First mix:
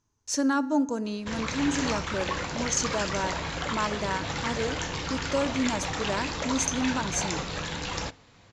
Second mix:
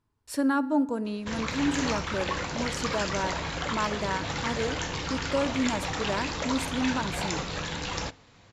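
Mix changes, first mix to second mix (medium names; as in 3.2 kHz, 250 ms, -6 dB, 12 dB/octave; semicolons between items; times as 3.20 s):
speech: remove resonant low-pass 6.3 kHz, resonance Q 15; master: add low-pass 10 kHz 12 dB/octave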